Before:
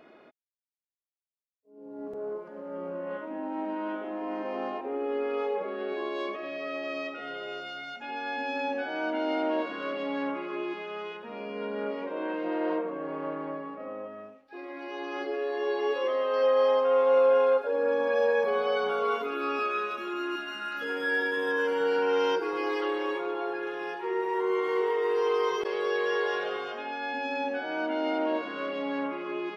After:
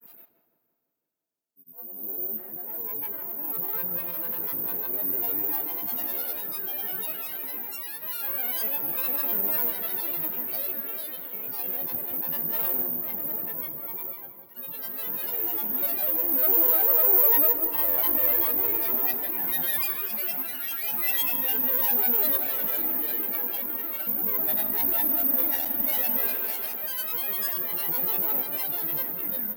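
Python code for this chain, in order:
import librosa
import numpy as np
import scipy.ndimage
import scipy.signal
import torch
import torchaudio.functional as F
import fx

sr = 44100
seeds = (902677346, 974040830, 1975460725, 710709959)

p1 = fx.diode_clip(x, sr, knee_db=-30.5)
p2 = fx.granulator(p1, sr, seeds[0], grain_ms=100.0, per_s=20.0, spray_ms=100.0, spread_st=12)
p3 = (np.kron(p2[::3], np.eye(3)[0]) * 3)[:len(p2)]
p4 = fx.high_shelf(p3, sr, hz=2400.0, db=11.0)
p5 = fx.notch(p4, sr, hz=1200.0, q=14.0)
p6 = p5 + fx.echo_filtered(p5, sr, ms=167, feedback_pct=59, hz=1300.0, wet_db=-8, dry=0)
p7 = fx.rev_plate(p6, sr, seeds[1], rt60_s=3.4, hf_ratio=0.7, predelay_ms=0, drr_db=14.5)
y = p7 * 10.0 ** (-8.0 / 20.0)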